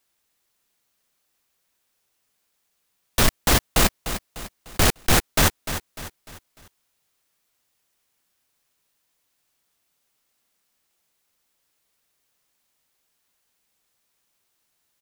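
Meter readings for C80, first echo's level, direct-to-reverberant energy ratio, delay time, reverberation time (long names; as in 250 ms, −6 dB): no reverb audible, −11.0 dB, no reverb audible, 299 ms, no reverb audible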